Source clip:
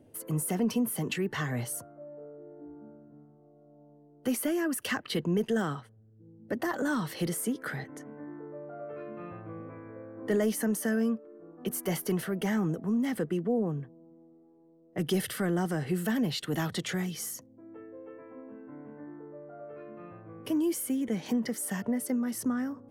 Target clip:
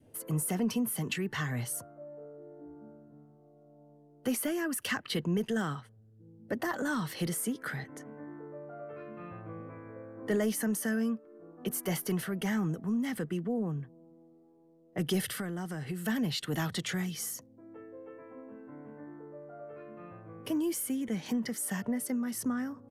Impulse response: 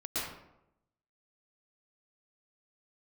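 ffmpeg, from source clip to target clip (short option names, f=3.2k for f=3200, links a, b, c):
-filter_complex "[0:a]asettb=1/sr,asplit=3[a][b][c];[a]atrim=end=15.334[d];[b]atrim=start=15.33:end=16.06,asetpts=PTS-STARTPTS,afade=t=in:d=0.004:c=qsin,afade=t=out:st=0.726:d=0.004:c=qsin,acompressor=threshold=-33dB:ratio=3[e];[c]atrim=start=16.056[f];[d][e]acrossfade=d=0.004:c1=hsin:c2=qsin[g];[g][f]acrossfade=d=0.004:c1=qsin:c2=hsin,adynamicequalizer=threshold=0.00562:dfrequency=550:dqfactor=0.96:tfrequency=550:tqfactor=0.96:attack=5:release=100:ratio=0.375:range=3:mode=cutabove:tftype=bell,aresample=32000,aresample=44100,equalizer=f=310:t=o:w=0.92:g=-2.5"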